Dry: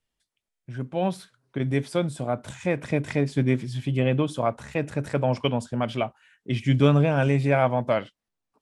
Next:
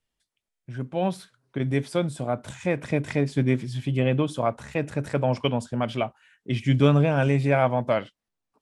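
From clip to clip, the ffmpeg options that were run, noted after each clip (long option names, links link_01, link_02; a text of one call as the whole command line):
ffmpeg -i in.wav -af anull out.wav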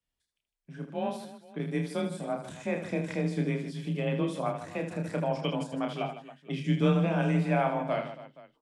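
ffmpeg -i in.wav -af "afreqshift=27,aecho=1:1:30|78|154.8|277.7|474.3:0.631|0.398|0.251|0.158|0.1,volume=-8dB" out.wav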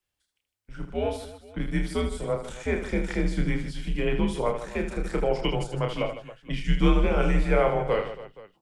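ffmpeg -i in.wav -af "afreqshift=-130,equalizer=frequency=97:width=3.2:gain=-12,volume=5.5dB" out.wav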